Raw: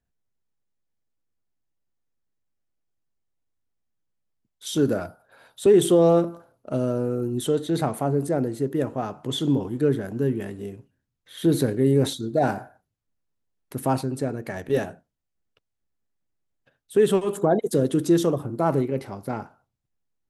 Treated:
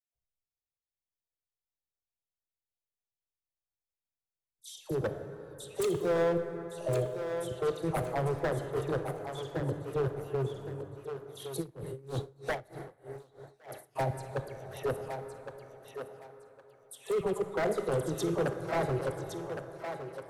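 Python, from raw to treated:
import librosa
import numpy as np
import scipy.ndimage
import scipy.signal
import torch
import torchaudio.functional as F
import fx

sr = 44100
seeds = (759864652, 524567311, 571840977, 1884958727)

y = fx.dynamic_eq(x, sr, hz=190.0, q=0.85, threshold_db=-34.0, ratio=4.0, max_db=4)
y = fx.level_steps(y, sr, step_db=22)
y = fx.fixed_phaser(y, sr, hz=610.0, stages=4)
y = fx.dispersion(y, sr, late='lows', ms=145.0, hz=1500.0)
y = 10.0 ** (-23.0 / 20.0) * (np.abs((y / 10.0 ** (-23.0 / 20.0) + 3.0) % 4.0 - 2.0) - 1.0)
y = fx.echo_thinned(y, sr, ms=1113, feedback_pct=25, hz=320.0, wet_db=-7)
y = fx.rev_plate(y, sr, seeds[0], rt60_s=3.6, hf_ratio=0.4, predelay_ms=0, drr_db=7.5)
y = fx.tremolo_db(y, sr, hz=3.2, depth_db=23, at=(11.6, 13.95), fade=0.02)
y = y * 10.0 ** (-1.5 / 20.0)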